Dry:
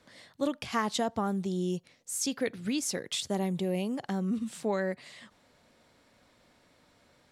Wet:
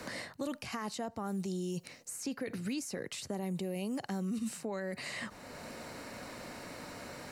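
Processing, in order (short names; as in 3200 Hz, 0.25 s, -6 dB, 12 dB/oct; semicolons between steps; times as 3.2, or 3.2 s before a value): high shelf 9000 Hz +6 dB; notch 3400 Hz, Q 5.1; reverse; compressor 6:1, threshold -38 dBFS, peak gain reduction 13.5 dB; reverse; limiter -36 dBFS, peak gain reduction 9.5 dB; three-band squash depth 70%; gain +6.5 dB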